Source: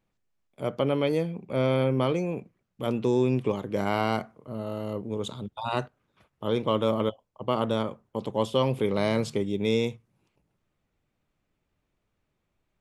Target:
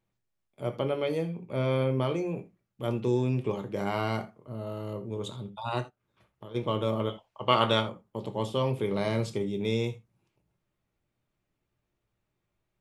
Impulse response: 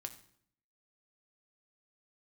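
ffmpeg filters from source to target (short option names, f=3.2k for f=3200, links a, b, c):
-filter_complex "[0:a]asplit=3[a][b][c];[a]afade=t=out:st=5.81:d=0.02[d];[b]acompressor=threshold=-39dB:ratio=8,afade=t=in:st=5.81:d=0.02,afade=t=out:st=6.54:d=0.02[e];[c]afade=t=in:st=6.54:d=0.02[f];[d][e][f]amix=inputs=3:normalize=0,asplit=3[g][h][i];[g]afade=t=out:st=7.09:d=0.02[j];[h]equalizer=f=2.5k:w=0.35:g=15,afade=t=in:st=7.09:d=0.02,afade=t=out:st=7.79:d=0.02[k];[i]afade=t=in:st=7.79:d=0.02[l];[j][k][l]amix=inputs=3:normalize=0[m];[1:a]atrim=start_sample=2205,atrim=end_sample=3969[n];[m][n]afir=irnorm=-1:irlink=0"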